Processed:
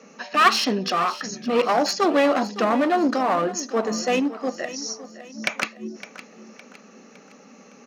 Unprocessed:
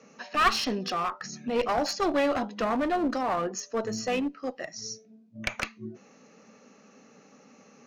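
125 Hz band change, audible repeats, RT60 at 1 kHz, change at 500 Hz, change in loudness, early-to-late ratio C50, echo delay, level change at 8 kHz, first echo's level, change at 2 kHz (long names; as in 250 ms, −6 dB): +4.0 dB, 3, no reverb audible, +6.5 dB, +6.5 dB, no reverb audible, 561 ms, +6.5 dB, −15.0 dB, +6.5 dB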